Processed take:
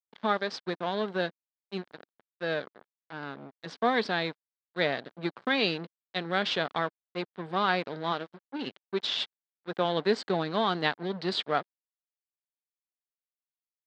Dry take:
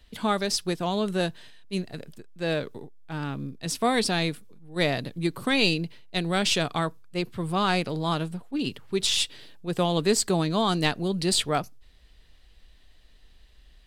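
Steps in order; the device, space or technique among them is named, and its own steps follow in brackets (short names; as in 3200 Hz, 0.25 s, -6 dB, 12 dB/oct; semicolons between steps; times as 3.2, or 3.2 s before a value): 8.11–9.85 dynamic EQ 160 Hz, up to -6 dB, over -45 dBFS, Q 6.2; blown loudspeaker (crossover distortion -35 dBFS; speaker cabinet 230–3900 Hz, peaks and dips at 310 Hz -4 dB, 1600 Hz +4 dB, 2600 Hz -6 dB)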